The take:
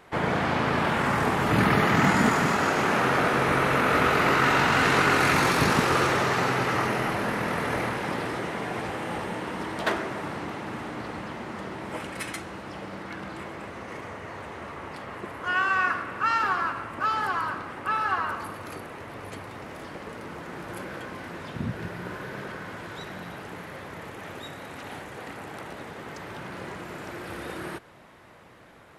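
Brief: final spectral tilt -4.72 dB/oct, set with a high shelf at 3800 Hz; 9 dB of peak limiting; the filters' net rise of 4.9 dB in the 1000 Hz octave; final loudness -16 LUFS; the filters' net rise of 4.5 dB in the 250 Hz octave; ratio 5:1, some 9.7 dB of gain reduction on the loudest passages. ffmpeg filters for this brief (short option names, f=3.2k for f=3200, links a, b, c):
-af "equalizer=f=250:t=o:g=5.5,equalizer=f=1k:t=o:g=5.5,highshelf=f=3.8k:g=5.5,acompressor=threshold=-24dB:ratio=5,volume=16.5dB,alimiter=limit=-6dB:level=0:latency=1"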